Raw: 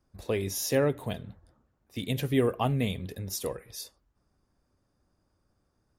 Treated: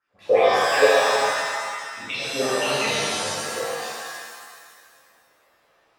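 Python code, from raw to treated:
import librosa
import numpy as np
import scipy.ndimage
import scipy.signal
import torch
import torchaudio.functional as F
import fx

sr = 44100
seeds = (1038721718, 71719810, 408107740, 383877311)

y = fx.envelope_sharpen(x, sr, power=3.0, at=(0.81, 2.06))
y = fx.rider(y, sr, range_db=5, speed_s=2.0)
y = fx.wah_lfo(y, sr, hz=5.8, low_hz=510.0, high_hz=2800.0, q=6.0)
y = fx.rev_shimmer(y, sr, seeds[0], rt60_s=1.7, semitones=7, shimmer_db=-2, drr_db=-11.5)
y = y * librosa.db_to_amplitude(8.5)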